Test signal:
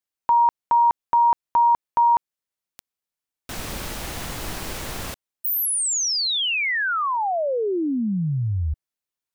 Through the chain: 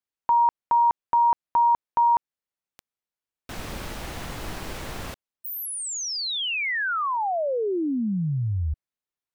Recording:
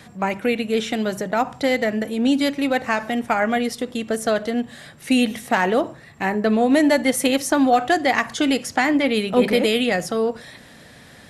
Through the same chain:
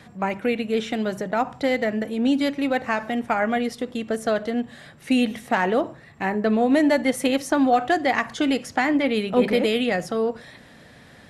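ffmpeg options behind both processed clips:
ffmpeg -i in.wav -af "highshelf=frequency=4600:gain=-8,volume=-2dB" out.wav

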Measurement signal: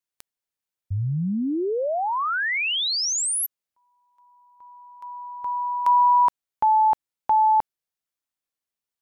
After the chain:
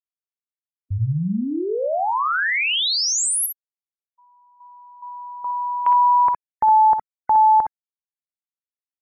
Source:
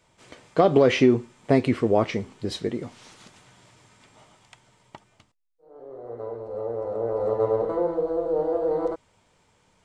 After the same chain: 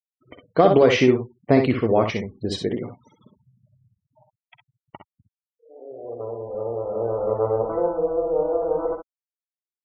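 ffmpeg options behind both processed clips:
ffmpeg -i in.wav -af "afftfilt=real='re*gte(hypot(re,im),0.01)':imag='im*gte(hypot(re,im),0.01)':win_size=1024:overlap=0.75,adynamicequalizer=threshold=0.0282:dfrequency=280:dqfactor=0.89:tfrequency=280:tqfactor=0.89:attack=5:release=100:ratio=0.375:range=2.5:mode=cutabove:tftype=bell,aecho=1:1:53|63:0.251|0.447,volume=2.5dB" out.wav

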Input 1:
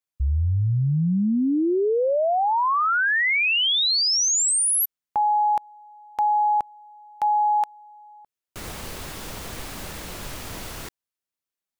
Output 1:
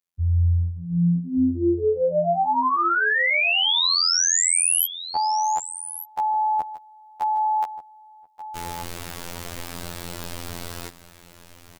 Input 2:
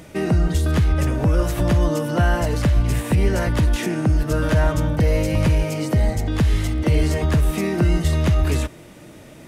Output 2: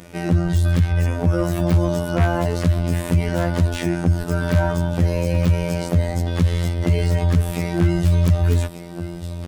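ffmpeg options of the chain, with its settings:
ffmpeg -i in.wav -af "afftfilt=real='hypot(re,im)*cos(PI*b)':imag='0':win_size=2048:overlap=0.75,aecho=1:1:1184:0.211,aeval=exprs='0.708*(cos(1*acos(clip(val(0)/0.708,-1,1)))-cos(1*PI/2))+0.282*(cos(5*acos(clip(val(0)/0.708,-1,1)))-cos(5*PI/2))+0.112*(cos(7*acos(clip(val(0)/0.708,-1,1)))-cos(7*PI/2))':channel_layout=same,volume=-2dB" out.wav

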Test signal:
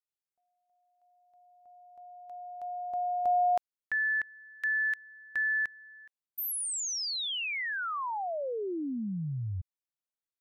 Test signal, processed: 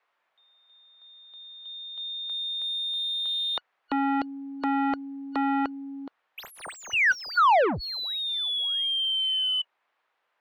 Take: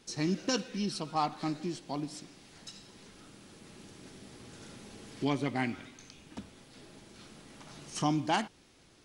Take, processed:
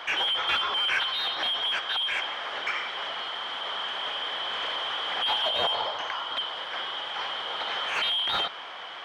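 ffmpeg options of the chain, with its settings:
ffmpeg -i in.wav -filter_complex "[0:a]afftfilt=real='real(if(lt(b,272),68*(eq(floor(b/68),0)*1+eq(floor(b/68),1)*3+eq(floor(b/68),2)*0+eq(floor(b/68),3)*2)+mod(b,68),b),0)':imag='imag(if(lt(b,272),68*(eq(floor(b/68),0)*1+eq(floor(b/68),1)*3+eq(floor(b/68),2)*0+eq(floor(b/68),3)*2)+mod(b,68),b),0)':win_size=2048:overlap=0.75,acrossover=split=1700[link_01][link_02];[link_01]acontrast=39[link_03];[link_03][link_02]amix=inputs=2:normalize=0,asplit=2[link_04][link_05];[link_05]highpass=frequency=720:poles=1,volume=32dB,asoftclip=type=tanh:threshold=-13.5dB[link_06];[link_04][link_06]amix=inputs=2:normalize=0,lowpass=frequency=2100:poles=1,volume=-6dB,acrossover=split=490 3300:gain=0.224 1 0.0891[link_07][link_08][link_09];[link_07][link_08][link_09]amix=inputs=3:normalize=0,volume=2.5dB" out.wav

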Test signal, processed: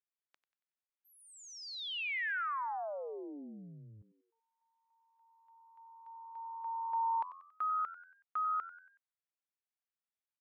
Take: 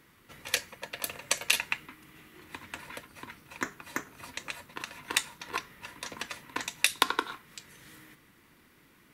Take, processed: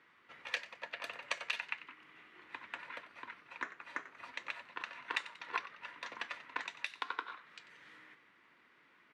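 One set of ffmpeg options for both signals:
ffmpeg -i in.wav -filter_complex "[0:a]lowpass=2200,alimiter=limit=-19.5dB:level=0:latency=1:release=296,highpass=frequency=1400:poles=1,asplit=5[link_01][link_02][link_03][link_04][link_05];[link_02]adelay=93,afreqshift=87,volume=-15dB[link_06];[link_03]adelay=186,afreqshift=174,volume=-21.9dB[link_07];[link_04]adelay=279,afreqshift=261,volume=-28.9dB[link_08];[link_05]adelay=372,afreqshift=348,volume=-35.8dB[link_09];[link_01][link_06][link_07][link_08][link_09]amix=inputs=5:normalize=0,volume=2dB" out.wav

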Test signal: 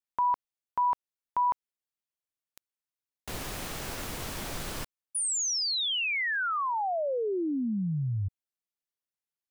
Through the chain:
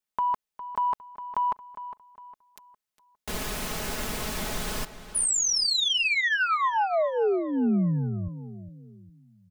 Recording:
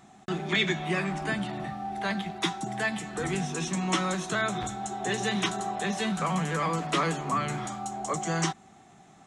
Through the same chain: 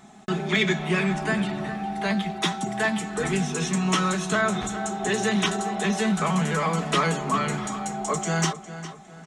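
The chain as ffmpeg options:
ffmpeg -i in.wav -filter_complex "[0:a]aecho=1:1:4.7:0.53,asplit=2[link_01][link_02];[link_02]asoftclip=type=tanh:threshold=-21.5dB,volume=-5dB[link_03];[link_01][link_03]amix=inputs=2:normalize=0,asplit=2[link_04][link_05];[link_05]adelay=407,lowpass=frequency=4600:poles=1,volume=-12.5dB,asplit=2[link_06][link_07];[link_07]adelay=407,lowpass=frequency=4600:poles=1,volume=0.38,asplit=2[link_08][link_09];[link_09]adelay=407,lowpass=frequency=4600:poles=1,volume=0.38,asplit=2[link_10][link_11];[link_11]adelay=407,lowpass=frequency=4600:poles=1,volume=0.38[link_12];[link_04][link_06][link_08][link_10][link_12]amix=inputs=5:normalize=0" out.wav

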